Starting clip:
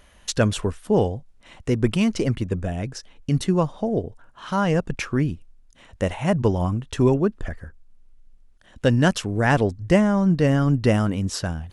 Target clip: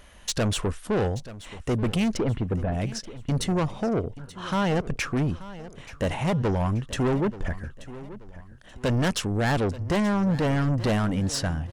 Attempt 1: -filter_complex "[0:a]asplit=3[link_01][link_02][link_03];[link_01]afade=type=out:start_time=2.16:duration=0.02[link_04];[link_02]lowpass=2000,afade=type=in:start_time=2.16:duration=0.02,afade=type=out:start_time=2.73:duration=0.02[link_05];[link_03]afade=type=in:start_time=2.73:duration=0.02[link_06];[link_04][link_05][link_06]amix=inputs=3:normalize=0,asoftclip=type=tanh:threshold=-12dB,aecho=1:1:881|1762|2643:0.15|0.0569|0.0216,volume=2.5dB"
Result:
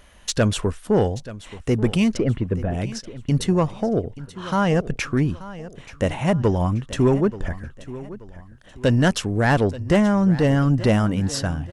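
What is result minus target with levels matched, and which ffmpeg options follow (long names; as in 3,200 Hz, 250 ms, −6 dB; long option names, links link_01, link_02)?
soft clipping: distortion −10 dB
-filter_complex "[0:a]asplit=3[link_01][link_02][link_03];[link_01]afade=type=out:start_time=2.16:duration=0.02[link_04];[link_02]lowpass=2000,afade=type=in:start_time=2.16:duration=0.02,afade=type=out:start_time=2.73:duration=0.02[link_05];[link_03]afade=type=in:start_time=2.73:duration=0.02[link_06];[link_04][link_05][link_06]amix=inputs=3:normalize=0,asoftclip=type=tanh:threshold=-23dB,aecho=1:1:881|1762|2643:0.15|0.0569|0.0216,volume=2.5dB"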